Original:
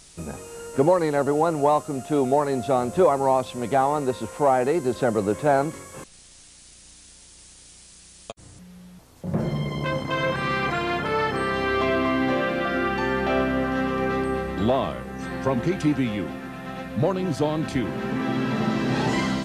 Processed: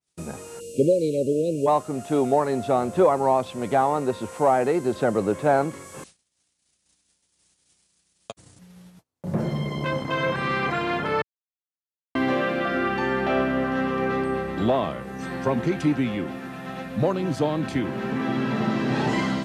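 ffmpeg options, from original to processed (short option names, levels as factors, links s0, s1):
-filter_complex "[0:a]asplit=3[s0][s1][s2];[s0]afade=t=out:st=0.59:d=0.02[s3];[s1]asuperstop=centerf=1200:order=20:qfactor=0.65,afade=t=in:st=0.59:d=0.02,afade=t=out:st=1.66:d=0.02[s4];[s2]afade=t=in:st=1.66:d=0.02[s5];[s3][s4][s5]amix=inputs=3:normalize=0,asplit=3[s6][s7][s8];[s6]atrim=end=11.22,asetpts=PTS-STARTPTS,afade=t=out:st=11.216:d=0.004:c=hsin[s9];[s7]atrim=start=11.22:end=12.15,asetpts=PTS-STARTPTS,volume=0[s10];[s8]atrim=start=12.15,asetpts=PTS-STARTPTS,afade=t=in:d=0.004:c=hsin[s11];[s9][s10][s11]concat=n=3:v=0:a=1,agate=range=0.02:threshold=0.00562:ratio=16:detection=peak,highpass=89,adynamicequalizer=threshold=0.00794:dfrequency=3800:dqfactor=0.7:tfrequency=3800:tqfactor=0.7:attack=5:release=100:ratio=0.375:range=2.5:mode=cutabove:tftype=highshelf"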